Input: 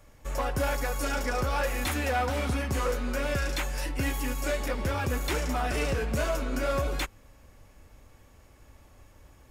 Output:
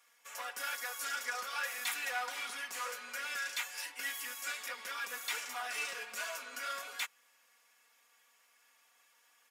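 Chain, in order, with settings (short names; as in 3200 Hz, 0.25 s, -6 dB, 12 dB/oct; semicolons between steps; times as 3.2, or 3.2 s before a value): HPF 1400 Hz 12 dB/oct; comb 4.2 ms, depth 89%; gain -5 dB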